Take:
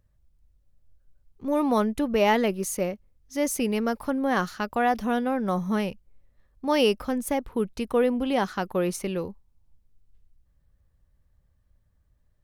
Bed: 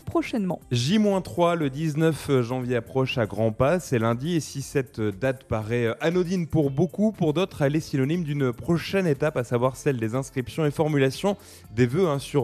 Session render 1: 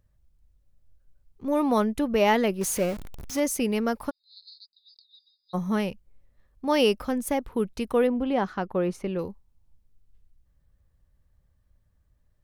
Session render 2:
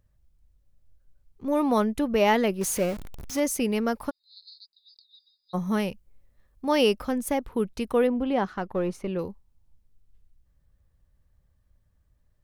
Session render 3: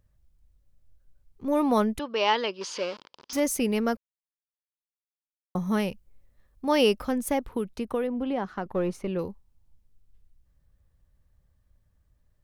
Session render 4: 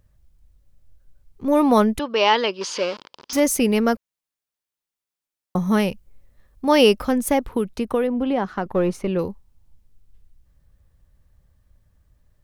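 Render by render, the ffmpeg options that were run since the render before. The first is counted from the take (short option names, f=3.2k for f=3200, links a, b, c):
-filter_complex "[0:a]asettb=1/sr,asplit=3[a][b][c];[a]atrim=end=2.614[d];[b]atrim=start=2.61:end=3.4,asetpts=PTS-STARTPTS,afade=t=in:d=0.004:c=qsin,afade=t=out:st=0.786:d=0.004:c=qsin,aeval=exprs='val(0)+0.5*0.0251*sgn(val(0))':c=same[e];[c]atrim=start=3.396[f];[d][e]acrossfade=d=0.004:c1=hsin:c2=qsin[g];[g][f]acrossfade=d=0.004:c1=qsin:c2=hsin,asplit=3[h][i][j];[h]afade=t=out:st=4.09:d=0.02[k];[i]asuperpass=centerf=4300:order=20:qfactor=3.1,afade=t=in:st=4.09:d=0.02,afade=t=out:st=5.53:d=0.02[l];[j]afade=t=in:st=5.53:d=0.02[m];[k][l][m]amix=inputs=3:normalize=0,asettb=1/sr,asplit=3[n][o][p];[n]atrim=end=8.074[q];[o]atrim=start=8.07:end=9.19,asetpts=PTS-STARTPTS,afade=t=in:d=0.004:c=qsin,afade=t=out:st=1.116:d=0.004:c=qsin,lowpass=f=1.6k:p=1[r];[p]atrim=start=9.186[s];[q][r]acrossfade=d=0.004:c1=hsin:c2=qsin[t];[t][s]acrossfade=d=0.004:c1=qsin:c2=hsin"
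-filter_complex "[0:a]asettb=1/sr,asplit=3[a][b][c];[a]atrim=end=5.674[d];[b]atrim=start=5.67:end=6.69,asetpts=PTS-STARTPTS,afade=t=in:d=0.004:c=qsin,afade=t=out:st=1.016:d=0.004:c=qsin,highshelf=f=6.9k:g=5[e];[c]atrim=start=6.686[f];[d][e]acrossfade=d=0.004:c1=hsin:c2=qsin[g];[g][f]acrossfade=d=0.004:c1=qsin:c2=hsin,asettb=1/sr,asplit=3[h][i][j];[h]atrim=end=8.454[k];[i]atrim=start=8.45:end=9.08,asetpts=PTS-STARTPTS,afade=t=in:d=0.004:c=qsin,afade=t=out:st=0.626:d=0.004:c=qsin,aeval=exprs='if(lt(val(0),0),0.708*val(0),val(0))':c=same[l];[j]atrim=start=9.076[m];[k][l]acrossfade=d=0.004:c1=hsin:c2=qsin[n];[n][m]acrossfade=d=0.004:c1=qsin:c2=hsin"
-filter_complex "[0:a]asettb=1/sr,asplit=3[a][b][c];[a]atrim=end=1.994[d];[b]atrim=start=1.99:end=3.33,asetpts=PTS-STARTPTS,afade=t=in:d=0.004:c=qsin,afade=t=out:st=1.336:d=0.004:c=qsin,highpass=490,equalizer=f=700:t=q:w=4:g=-9,equalizer=f=1k:t=q:w=4:g=6,equalizer=f=2k:t=q:w=4:g=-5,equalizer=f=3.1k:t=q:w=4:g=6,equalizer=f=4.9k:t=q:w=4:g=9,lowpass=f=5.2k:w=0.5412,lowpass=f=5.2k:w=1.3066[e];[c]atrim=start=3.326[f];[d][e]acrossfade=d=0.004:c1=hsin:c2=qsin[g];[g][f]acrossfade=d=0.004:c1=qsin:c2=hsin,asettb=1/sr,asplit=3[h][i][j];[h]atrim=end=7.514[k];[i]atrim=start=7.51:end=8.66,asetpts=PTS-STARTPTS,afade=t=in:d=0.004:c=qsin,afade=t=out:st=1.146:d=0.004:c=qsin,acrossover=split=130|1800[l][m][n];[l]acompressor=threshold=-48dB:ratio=4[o];[m]acompressor=threshold=-26dB:ratio=4[p];[n]acompressor=threshold=-48dB:ratio=4[q];[o][p][q]amix=inputs=3:normalize=0[r];[j]atrim=start=8.656[s];[k][r]acrossfade=d=0.004:c1=hsin:c2=qsin[t];[t][s]acrossfade=d=0.004:c1=qsin:c2=hsin,asplit=3[u][v][w];[u]atrim=end=3.97,asetpts=PTS-STARTPTS,afade=t=out:st=3.966:d=0.004:c=hsin[x];[v]atrim=start=3.97:end=5.55,asetpts=PTS-STARTPTS,volume=0[y];[w]atrim=start=5.55,asetpts=PTS-STARTPTS,afade=t=in:d=0.004:c=hsin[z];[x][y][z]concat=n=3:v=0:a=1"
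-af "volume=7dB,alimiter=limit=-3dB:level=0:latency=1"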